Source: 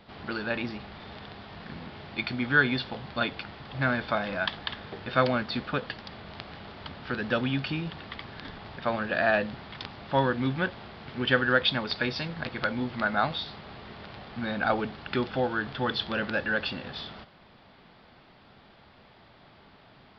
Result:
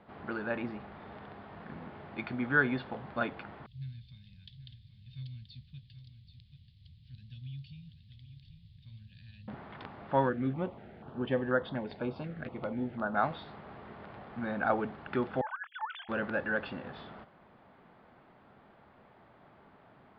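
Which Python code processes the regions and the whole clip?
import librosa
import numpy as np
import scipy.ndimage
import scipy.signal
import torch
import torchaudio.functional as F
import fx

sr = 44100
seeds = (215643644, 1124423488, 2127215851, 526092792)

y = fx.chain(x, sr, fx.ellip_bandstop(low_hz=120.0, high_hz=3900.0, order=3, stop_db=50),
    fx.echo_single(ms=782, db=-10.5), at=(3.66, 9.48))
y = fx.chain(y, sr, fx.air_absorb(metres=150.0),
    fx.filter_held_notch(hz=4.1, low_hz=950.0, high_hz=2400.0), at=(10.29, 13.15))
y = fx.chain(y, sr, fx.sine_speech(),
    fx.cheby2_highpass(hz=460.0, order=4, stop_db=40),
    fx.over_compress(threshold_db=-32.0, ratio=-0.5), at=(15.41, 16.09))
y = scipy.signal.sosfilt(scipy.signal.butter(2, 1600.0, 'lowpass', fs=sr, output='sos'), y)
y = fx.low_shelf(y, sr, hz=89.0, db=-9.5)
y = F.gain(torch.from_numpy(y), -2.0).numpy()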